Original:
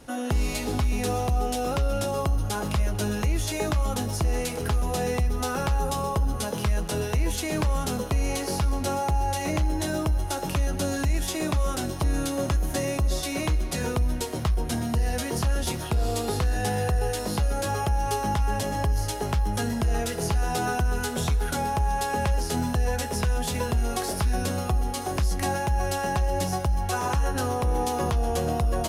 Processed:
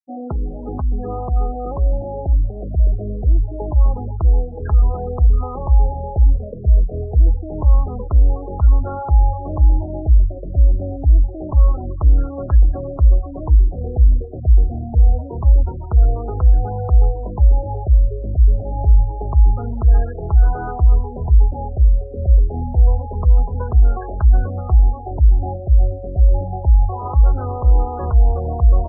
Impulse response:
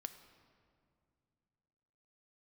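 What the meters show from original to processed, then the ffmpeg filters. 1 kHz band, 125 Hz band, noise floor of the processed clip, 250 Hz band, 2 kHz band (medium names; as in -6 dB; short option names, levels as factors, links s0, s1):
-1.0 dB, +10.5 dB, -29 dBFS, -1.5 dB, -13.0 dB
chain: -af "asubboost=boost=9.5:cutoff=53,afftfilt=real='re*gte(hypot(re,im),0.0501)':imag='im*gte(hypot(re,im),0.0501)':win_size=1024:overlap=0.75,afftfilt=real='re*lt(b*sr/1024,750*pow(1700/750,0.5+0.5*sin(2*PI*0.26*pts/sr)))':imag='im*lt(b*sr/1024,750*pow(1700/750,0.5+0.5*sin(2*PI*0.26*pts/sr)))':win_size=1024:overlap=0.75,volume=1.19"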